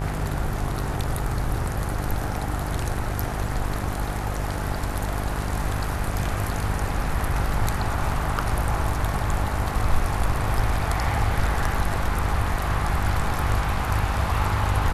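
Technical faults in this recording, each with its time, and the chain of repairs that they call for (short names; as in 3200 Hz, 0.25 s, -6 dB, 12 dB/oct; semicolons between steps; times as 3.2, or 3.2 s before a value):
buzz 50 Hz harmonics 39 -29 dBFS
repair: de-hum 50 Hz, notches 39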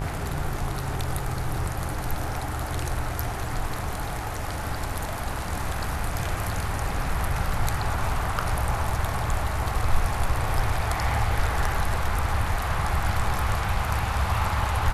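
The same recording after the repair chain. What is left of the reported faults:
none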